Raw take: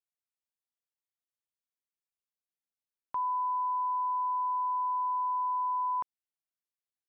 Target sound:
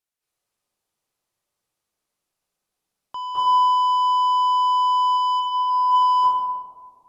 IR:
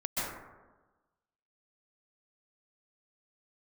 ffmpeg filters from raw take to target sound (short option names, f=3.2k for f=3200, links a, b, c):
-filter_complex "[0:a]asplit=3[a][b][c];[a]afade=t=out:st=5.16:d=0.02[d];[b]lowpass=f=1k:p=1,afade=t=in:st=5.16:d=0.02,afade=t=out:st=5.69:d=0.02[e];[c]afade=t=in:st=5.69:d=0.02[f];[d][e][f]amix=inputs=3:normalize=0,asoftclip=type=tanh:threshold=-35dB[g];[1:a]atrim=start_sample=2205,asetrate=26019,aresample=44100[h];[g][h]afir=irnorm=-1:irlink=0,volume=7dB"